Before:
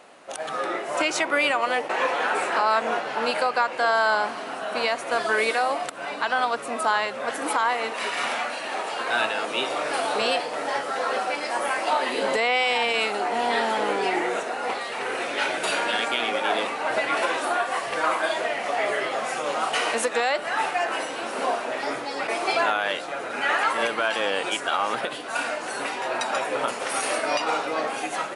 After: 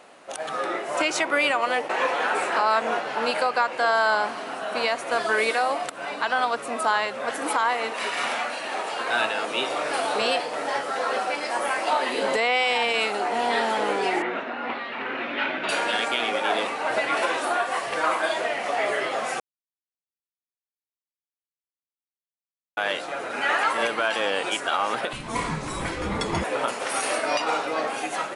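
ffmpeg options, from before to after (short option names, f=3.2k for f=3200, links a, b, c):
-filter_complex "[0:a]asettb=1/sr,asplit=3[a][b][c];[a]atrim=end=14.224[d];[b]atrim=start=14.22:end=15.69,asetpts=PTS-STARTPTS,afade=t=in:d=0.004:c=qsin,afade=t=out:st=1.466:d=0.004:c=qsin,highpass=100,equalizer=f=250:t=q:w=4:g=9,equalizer=f=460:t=q:w=4:g=-8,equalizer=f=750:t=q:w=4:g=-5,lowpass=f=3.3k:w=0.5412,lowpass=f=3.3k:w=1.3066[e];[c]atrim=start=15.686[f];[d][e]acrossfade=d=0.004:c1=hsin:c2=qsin[g];[g][f]acrossfade=d=0.004:c1=qsin:c2=hsin,asettb=1/sr,asplit=3[h][i][j];[h]atrim=end=25.134[k];[i]atrim=start=25.13:end=26.44,asetpts=PTS-STARTPTS,afade=t=in:d=0.004:c=qsin,afade=t=out:st=1.306:d=0.004:c=qsin,afreqshift=-450[l];[j]atrim=start=26.436[m];[k][l]acrossfade=d=0.004:c1=hsin:c2=qsin[n];[n][m]acrossfade=d=0.004:c1=qsin:c2=hsin,asplit=3[o][p][q];[o]atrim=end=19.4,asetpts=PTS-STARTPTS,afade=t=out:st=19.396:d=0.004:c=hsin[r];[p]atrim=start=19.4:end=22.77,asetpts=PTS-STARTPTS,volume=0[s];[q]atrim=start=22.77,asetpts=PTS-STARTPTS,afade=t=in:d=0.004:c=hsin[t];[r][s][t]concat=n=3:v=0:a=1"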